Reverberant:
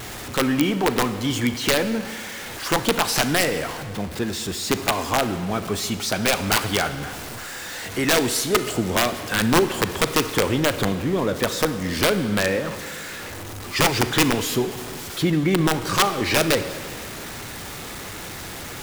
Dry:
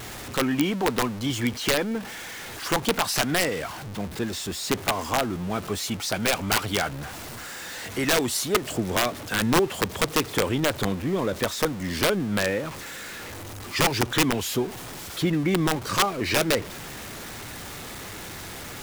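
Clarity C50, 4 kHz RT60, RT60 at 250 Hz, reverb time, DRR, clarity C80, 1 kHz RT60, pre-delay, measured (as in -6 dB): 11.0 dB, 1.7 s, 1.8 s, 1.8 s, 10.0 dB, 12.5 dB, 1.8 s, 32 ms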